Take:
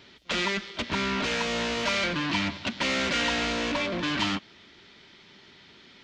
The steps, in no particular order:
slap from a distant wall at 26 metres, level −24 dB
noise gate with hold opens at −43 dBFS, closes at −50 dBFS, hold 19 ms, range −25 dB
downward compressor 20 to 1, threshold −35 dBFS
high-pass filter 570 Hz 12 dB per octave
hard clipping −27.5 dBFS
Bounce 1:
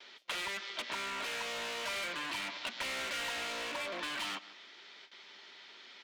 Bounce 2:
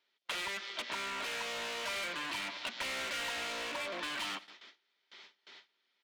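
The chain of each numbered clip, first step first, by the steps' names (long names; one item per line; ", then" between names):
slap from a distant wall, then noise gate with hold, then high-pass filter, then hard clipping, then downward compressor
high-pass filter, then hard clipping, then slap from a distant wall, then downward compressor, then noise gate with hold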